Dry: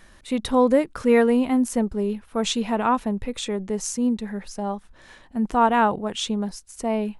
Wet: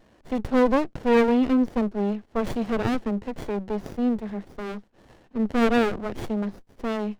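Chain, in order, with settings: Chebyshev band-pass 200–5900 Hz, order 5; sliding maximum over 33 samples; trim +1 dB

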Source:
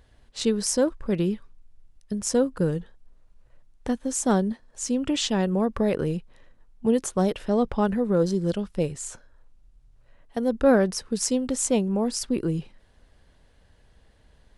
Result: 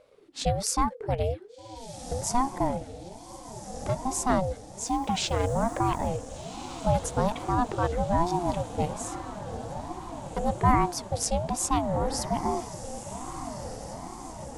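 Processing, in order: 4.85–6.07 s: added noise blue -62 dBFS; on a send: echo that smears into a reverb 1526 ms, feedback 60%, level -11 dB; on the sum: ring modulator with a swept carrier 410 Hz, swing 35%, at 1.2 Hz

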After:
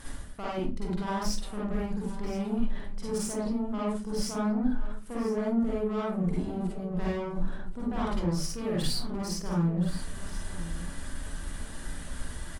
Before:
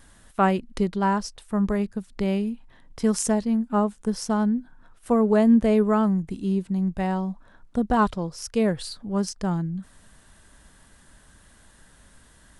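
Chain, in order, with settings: reverse; compression 5:1, threshold -36 dBFS, peak gain reduction 19.5 dB; reverse; peak limiter -32 dBFS, peak gain reduction 11 dB; valve stage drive 40 dB, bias 0.4; delay 1023 ms -15.5 dB; reverberation RT60 0.30 s, pre-delay 43 ms, DRR -6 dB; trim +6 dB

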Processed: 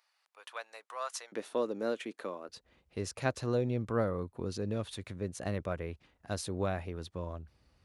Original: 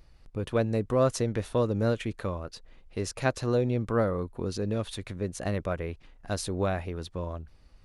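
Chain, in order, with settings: high-pass 850 Hz 24 dB/octave, from 1.32 s 250 Hz, from 2.49 s 58 Hz; trim -5 dB

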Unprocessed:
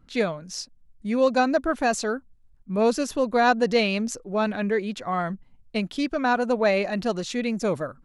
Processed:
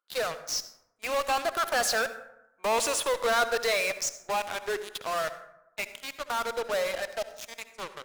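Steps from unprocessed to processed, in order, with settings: drifting ripple filter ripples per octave 0.65, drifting +0.65 Hz, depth 9 dB; Doppler pass-by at 2.51 s, 21 m/s, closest 18 m; high-pass 560 Hz 24 dB/octave; treble shelf 5.9 kHz +2.5 dB; in parallel at -5.5 dB: fuzz box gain 48 dB, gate -42 dBFS; on the sum: reverberation RT60 0.85 s, pre-delay 58 ms, DRR 11.5 dB; trim -8.5 dB

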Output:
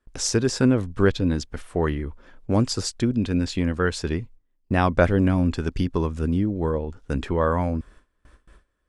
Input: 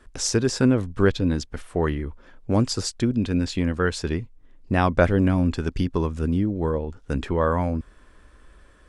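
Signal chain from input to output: gate with hold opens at -40 dBFS

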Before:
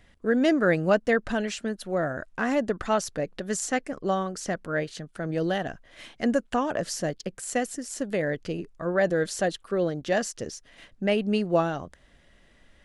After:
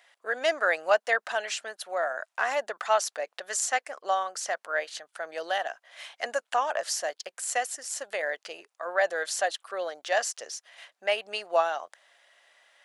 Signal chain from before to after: Chebyshev high-pass 690 Hz, order 3; trim +3 dB

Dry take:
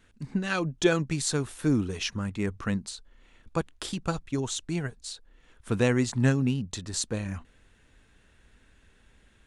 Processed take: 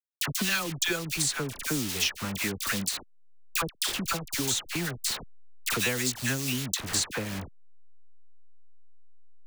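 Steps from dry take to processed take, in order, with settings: send-on-delta sampling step -35.5 dBFS; tilt shelf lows -7.5 dB, about 1.4 kHz; phase dispersion lows, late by 66 ms, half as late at 1.2 kHz; three bands compressed up and down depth 100%; trim +1.5 dB

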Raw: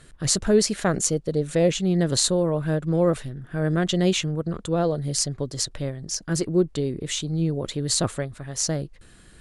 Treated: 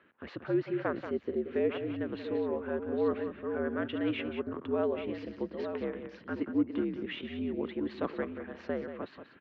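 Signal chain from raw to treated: chunks repeated in reverse 656 ms, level -9.5 dB; gain riding within 4 dB 0.5 s; on a send: delay 183 ms -9.5 dB; on the sum: mistuned SSB -71 Hz 280–2800 Hz; trim -6.5 dB

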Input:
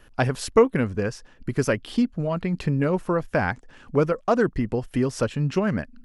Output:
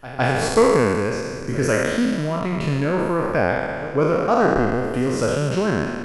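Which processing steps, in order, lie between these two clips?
spectral sustain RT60 2.01 s; pre-echo 157 ms -15.5 dB; trim -1 dB

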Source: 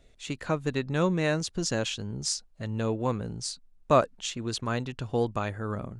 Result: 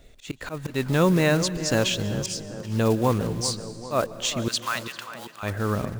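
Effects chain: block-companded coder 5-bit; 4.48–5.43 s: high-pass 1 kHz 24 dB/octave; in parallel at +2.5 dB: peak limiter -18 dBFS, peak gain reduction 8.5 dB; on the sum: slow attack 166 ms; tape echo 395 ms, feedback 63%, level -10 dB, low-pass 1.6 kHz; on a send at -17 dB: reverberation RT60 1.5 s, pre-delay 118 ms

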